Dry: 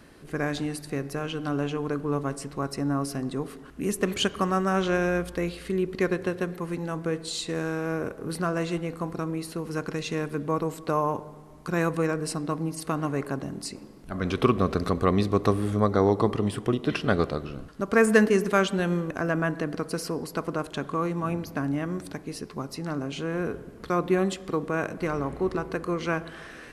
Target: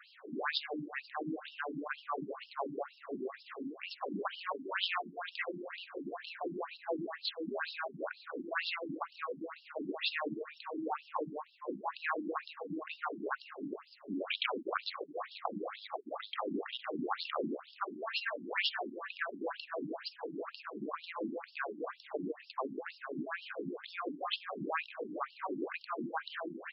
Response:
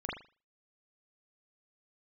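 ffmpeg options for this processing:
-af "aecho=1:1:297|594|891|1188|1485:0.168|0.089|0.0472|0.025|0.0132,afftfilt=real='re*lt(hypot(re,im),0.158)':imag='im*lt(hypot(re,im),0.158)':win_size=1024:overlap=0.75,afftfilt=real='re*between(b*sr/1024,240*pow(3900/240,0.5+0.5*sin(2*PI*2.1*pts/sr))/1.41,240*pow(3900/240,0.5+0.5*sin(2*PI*2.1*pts/sr))*1.41)':imag='im*between(b*sr/1024,240*pow(3900/240,0.5+0.5*sin(2*PI*2.1*pts/sr))/1.41,240*pow(3900/240,0.5+0.5*sin(2*PI*2.1*pts/sr))*1.41)':win_size=1024:overlap=0.75,volume=4.5dB"

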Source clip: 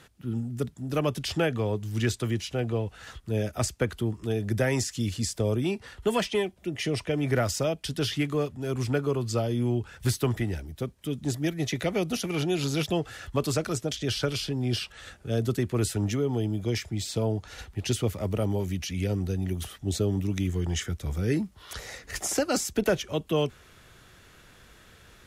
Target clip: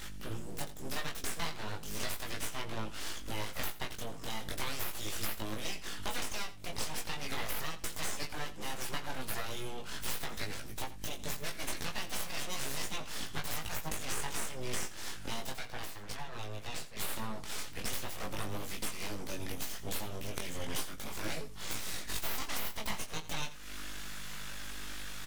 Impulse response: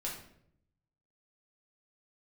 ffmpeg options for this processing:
-filter_complex "[0:a]tiltshelf=f=660:g=-9.5,aeval=exprs='val(0)+0.00355*(sin(2*PI*50*n/s)+sin(2*PI*2*50*n/s)/2+sin(2*PI*3*50*n/s)/3+sin(2*PI*4*50*n/s)/4+sin(2*PI*5*50*n/s)/5)':c=same,acompressor=threshold=-39dB:ratio=4,flanger=delay=18:depth=5.7:speed=0.37,asettb=1/sr,asplit=3[a][b][c];[a]atrim=end=15.534[d];[b]atrim=start=15.53:end=16.97,asetpts=PTS-STARTPTS,afade=t=in:d=0.004:c=qsin,afade=t=out:st=1.436:d=0.004:c=qsin,bass=f=250:g=-12,treble=f=4k:g=-10[e];[c]atrim=start=16.966[f];[d][e]acrossfade=d=0.004:c1=hsin:c2=qsin[g];[g][f]acrossfade=d=0.004:c1=qsin:c2=hsin,aeval=exprs='abs(val(0))':c=same,asplit=2[h][i];[i]adelay=19,volume=-8dB[j];[h][j]amix=inputs=2:normalize=0,aecho=1:1:86:0.168,volume=7dB"

